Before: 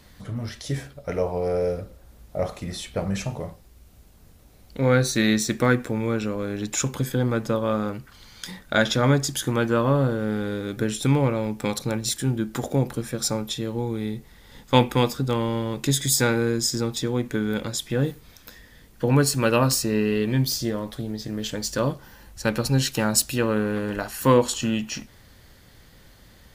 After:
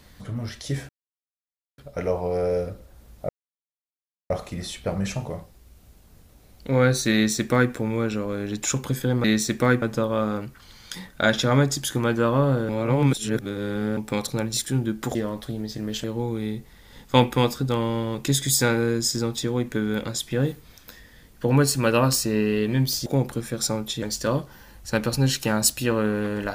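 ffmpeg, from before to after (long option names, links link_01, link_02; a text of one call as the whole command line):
ffmpeg -i in.wav -filter_complex "[0:a]asplit=11[link_01][link_02][link_03][link_04][link_05][link_06][link_07][link_08][link_09][link_10][link_11];[link_01]atrim=end=0.89,asetpts=PTS-STARTPTS,afade=type=out:start_time=0.886:duration=0.004:curve=hsin,apad=pad_dur=0.89[link_12];[link_02]atrim=start=0.89:end=2.4,asetpts=PTS-STARTPTS,afade=type=in:duration=0.004:curve=hsin,afade=type=out:start_time=1.506:duration=0.004:curve=hsin,apad=pad_dur=1.01[link_13];[link_03]atrim=start=2.4:end=7.342,asetpts=PTS-STARTPTS,afade=type=in:duration=0.004:curve=hsin[link_14];[link_04]atrim=start=5.238:end=5.822[link_15];[link_05]atrim=start=7.338:end=10.212[link_16];[link_06]atrim=start=10.208:end=11.492,asetpts=PTS-STARTPTS,areverse[link_17];[link_07]atrim=start=11.488:end=12.672[link_18];[link_08]atrim=start=20.648:end=21.542[link_19];[link_09]atrim=start=13.628:end=20.652[link_20];[link_10]atrim=start=12.668:end=13.632[link_21];[link_11]atrim=start=21.538[link_22];[link_12][link_13][link_14]concat=n=3:v=0:a=1[link_23];[link_23][link_15]acrossfade=duration=0.004:curve1=hsin:curve2=hsin[link_24];[link_24][link_16]acrossfade=duration=0.004:curve1=hsin:curve2=hsin[link_25];[link_25][link_17]acrossfade=duration=0.004:curve1=hsin:curve2=hsin[link_26];[link_26][link_18]acrossfade=duration=0.004:curve1=hsin:curve2=hsin[link_27];[link_27][link_19]acrossfade=duration=0.004:curve1=hsin:curve2=hsin[link_28];[link_28][link_20]acrossfade=duration=0.004:curve1=hsin:curve2=hsin[link_29];[link_29][link_21]acrossfade=duration=0.004:curve1=hsin:curve2=hsin[link_30];[link_30][link_22]acrossfade=duration=0.004:curve1=hsin:curve2=hsin" out.wav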